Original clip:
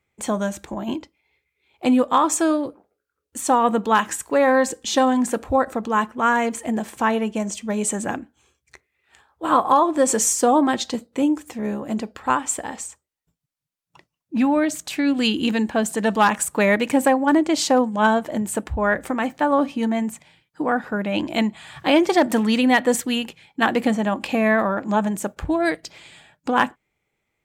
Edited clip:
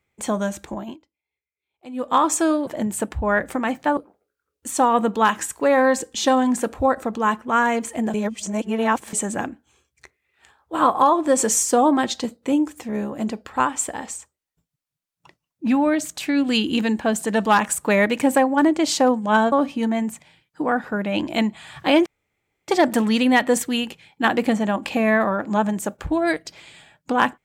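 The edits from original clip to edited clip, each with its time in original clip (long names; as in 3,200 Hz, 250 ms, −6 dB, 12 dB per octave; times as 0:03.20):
0:00.74–0:02.16: duck −19.5 dB, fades 0.23 s
0:06.84–0:07.83: reverse
0:18.22–0:19.52: move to 0:02.67
0:22.06: splice in room tone 0.62 s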